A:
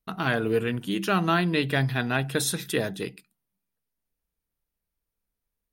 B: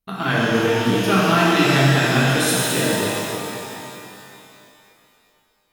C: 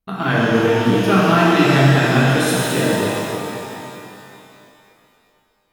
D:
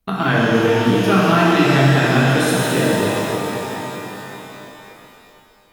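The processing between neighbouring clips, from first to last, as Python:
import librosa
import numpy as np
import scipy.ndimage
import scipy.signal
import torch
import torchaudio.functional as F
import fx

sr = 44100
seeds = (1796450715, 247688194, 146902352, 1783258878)

y1 = fx.rev_shimmer(x, sr, seeds[0], rt60_s=2.8, semitones=12, shimmer_db=-8, drr_db=-7.5)
y2 = fx.high_shelf(y1, sr, hz=2400.0, db=-7.5)
y2 = y2 * librosa.db_to_amplitude(3.5)
y3 = fx.band_squash(y2, sr, depth_pct=40)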